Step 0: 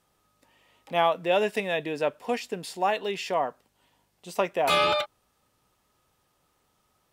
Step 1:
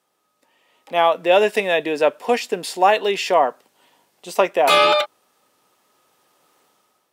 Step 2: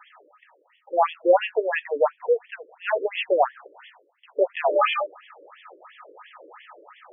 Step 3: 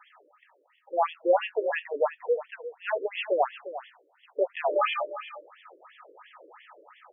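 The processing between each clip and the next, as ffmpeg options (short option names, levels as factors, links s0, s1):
-af "highpass=320,dynaudnorm=f=660:g=3:m=3.76,lowshelf=f=420:g=3.5"
-af "areverse,acompressor=mode=upward:threshold=0.0891:ratio=2.5,areverse,afftfilt=real='re*between(b*sr/1024,400*pow(2500/400,0.5+0.5*sin(2*PI*2.9*pts/sr))/1.41,400*pow(2500/400,0.5+0.5*sin(2*PI*2.9*pts/sr))*1.41)':imag='im*between(b*sr/1024,400*pow(2500/400,0.5+0.5*sin(2*PI*2.9*pts/sr))/1.41,400*pow(2500/400,0.5+0.5*sin(2*PI*2.9*pts/sr))*1.41)':win_size=1024:overlap=0.75"
-af "aecho=1:1:352:0.224,volume=0.562"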